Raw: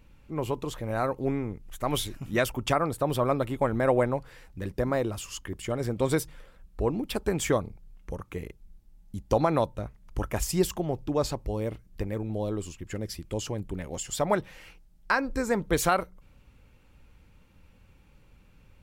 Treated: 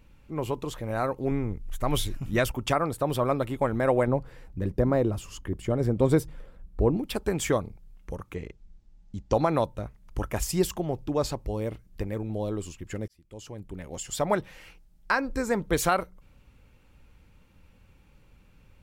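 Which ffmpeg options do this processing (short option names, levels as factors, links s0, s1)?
-filter_complex "[0:a]asettb=1/sr,asplit=3[s0][s1][s2];[s0]atrim=end=1.314[s3];[s1]atrim=start=1.31:end=2.51,asetpts=PTS-STARTPTS,afade=t=in:d=0.004:c=qsin,afade=t=out:st=1.196:d=0.004:c=qsin,lowshelf=f=96:g=11[s4];[s2]atrim=start=2.506[s5];[s3][s4]acrossfade=d=0.004:c1=hsin:c2=qsin[s6];[s6][s5]acrossfade=d=0.004:c1=qsin:c2=hsin,asettb=1/sr,asplit=3[s7][s8][s9];[s7]atrim=end=4.074[s10];[s8]atrim=start=4.07:end=6.97,asetpts=PTS-STARTPTS,afade=t=in:d=0.004:c=qsin,afade=t=out:st=2.896:d=0.004:c=qsin,tiltshelf=f=910:g=6[s11];[s9]atrim=start=6.966[s12];[s10][s11]acrossfade=d=0.004:c1=hsin:c2=qsin[s13];[s13][s12]acrossfade=d=0.004:c1=qsin:c2=hsin,asettb=1/sr,asplit=3[s14][s15][s16];[s14]atrim=end=8.344[s17];[s15]atrim=start=8.34:end=9.34,asetpts=PTS-STARTPTS,afade=t=in:d=0.004:c=qsin,afade=t=out:st=0.996:d=0.004:c=qsin,lowpass=f=7200:w=0.5412,lowpass=f=7200:w=1.3066[s18];[s16]atrim=start=9.336[s19];[s17][s18]acrossfade=d=0.004:c1=hsin:c2=qsin[s20];[s20][s19]acrossfade=d=0.004:c1=qsin:c2=hsin,asplit=2[s21][s22];[s21]atrim=end=13.08,asetpts=PTS-STARTPTS,afade=t=out:st=13.076:d=0.004:c=hsin[s23];[s22]atrim=start=13.08,asetpts=PTS-STARTPTS,afade=t=in:d=1.11[s24];[s23][s24]concat=n=2:v=0:a=1"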